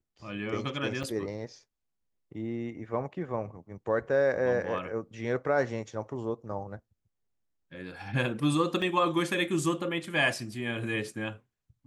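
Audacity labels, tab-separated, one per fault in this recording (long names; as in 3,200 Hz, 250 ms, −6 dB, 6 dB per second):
1.030000	1.040000	drop-out 5.3 ms
8.820000	8.820000	drop-out 2.5 ms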